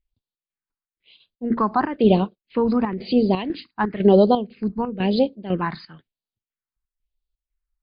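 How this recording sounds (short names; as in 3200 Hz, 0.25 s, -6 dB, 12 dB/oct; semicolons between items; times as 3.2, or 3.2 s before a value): chopped level 2 Hz, depth 65%, duty 70%; phasing stages 4, 1 Hz, lowest notch 510–1800 Hz; MP3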